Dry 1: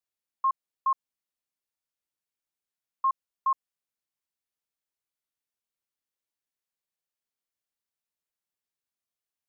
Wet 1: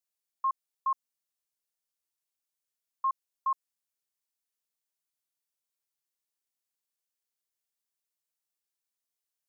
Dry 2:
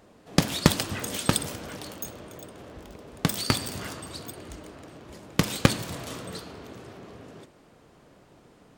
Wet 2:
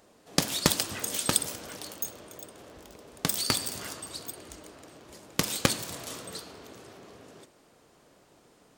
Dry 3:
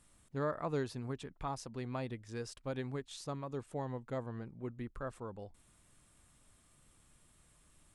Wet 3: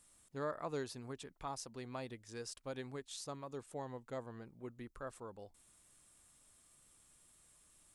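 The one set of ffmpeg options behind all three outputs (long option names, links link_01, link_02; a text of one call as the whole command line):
ffmpeg -i in.wav -af "bass=frequency=250:gain=-6,treble=frequency=4000:gain=7,volume=-3.5dB" out.wav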